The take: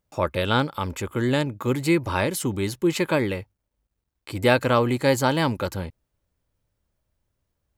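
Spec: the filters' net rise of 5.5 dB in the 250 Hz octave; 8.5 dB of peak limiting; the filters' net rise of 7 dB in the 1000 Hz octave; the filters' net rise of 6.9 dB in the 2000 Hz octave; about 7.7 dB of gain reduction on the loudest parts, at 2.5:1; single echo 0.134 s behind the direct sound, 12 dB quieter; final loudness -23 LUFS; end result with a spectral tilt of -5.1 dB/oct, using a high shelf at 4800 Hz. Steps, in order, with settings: bell 250 Hz +6.5 dB; bell 1000 Hz +6.5 dB; bell 2000 Hz +6 dB; high shelf 4800 Hz +3.5 dB; compressor 2.5:1, threshold -21 dBFS; limiter -13.5 dBFS; echo 0.134 s -12 dB; gain +3 dB

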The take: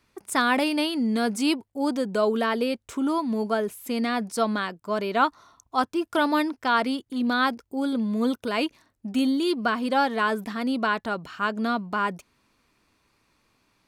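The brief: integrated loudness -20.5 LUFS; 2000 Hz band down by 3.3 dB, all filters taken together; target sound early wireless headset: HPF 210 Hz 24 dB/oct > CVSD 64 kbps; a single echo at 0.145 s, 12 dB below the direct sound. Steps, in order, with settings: HPF 210 Hz 24 dB/oct; bell 2000 Hz -5 dB; echo 0.145 s -12 dB; CVSD 64 kbps; gain +6.5 dB

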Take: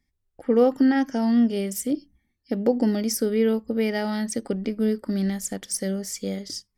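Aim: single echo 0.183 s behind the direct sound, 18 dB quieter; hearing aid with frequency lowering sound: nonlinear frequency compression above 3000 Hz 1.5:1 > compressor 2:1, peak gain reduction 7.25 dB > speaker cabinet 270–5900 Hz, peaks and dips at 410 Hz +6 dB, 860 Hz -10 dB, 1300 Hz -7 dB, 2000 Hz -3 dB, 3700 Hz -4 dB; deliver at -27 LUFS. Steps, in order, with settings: echo 0.183 s -18 dB; nonlinear frequency compression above 3000 Hz 1.5:1; compressor 2:1, threshold -26 dBFS; speaker cabinet 270–5900 Hz, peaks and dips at 410 Hz +6 dB, 860 Hz -10 dB, 1300 Hz -7 dB, 2000 Hz -3 dB, 3700 Hz -4 dB; gain +2.5 dB

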